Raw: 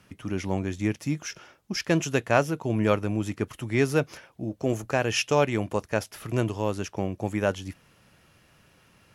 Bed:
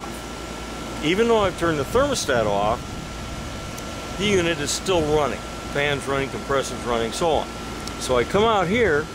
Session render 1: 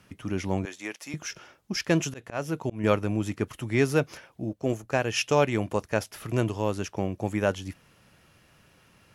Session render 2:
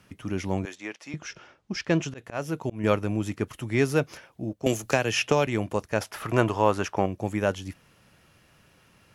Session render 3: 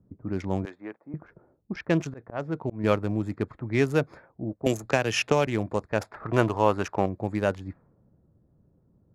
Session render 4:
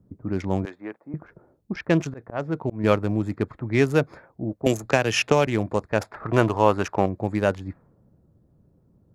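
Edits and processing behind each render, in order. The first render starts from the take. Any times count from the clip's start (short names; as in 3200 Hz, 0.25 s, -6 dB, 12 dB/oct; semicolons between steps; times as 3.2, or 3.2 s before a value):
0.65–1.14 HPF 600 Hz; 2–2.84 auto swell 0.249 s; 4.53–5.21 upward expander, over -37 dBFS
0.75–2.18 air absorption 89 m; 4.66–5.47 three-band squash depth 100%; 6.01–7.06 bell 1100 Hz +11 dB 2.3 oct
Wiener smoothing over 15 samples; low-pass opened by the level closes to 340 Hz, open at -24 dBFS
gain +3.5 dB; limiter -3 dBFS, peak gain reduction 1 dB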